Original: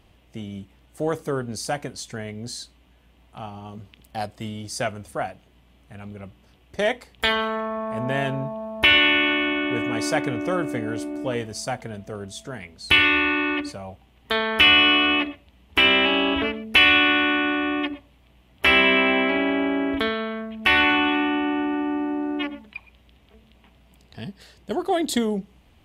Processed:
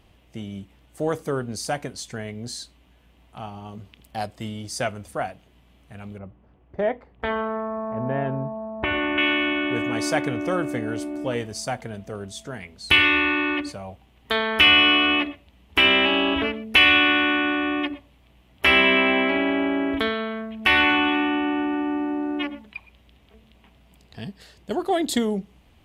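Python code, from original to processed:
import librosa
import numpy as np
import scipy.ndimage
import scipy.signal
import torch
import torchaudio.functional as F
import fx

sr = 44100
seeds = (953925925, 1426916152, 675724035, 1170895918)

y = fx.lowpass(x, sr, hz=1200.0, slope=12, at=(6.18, 9.18))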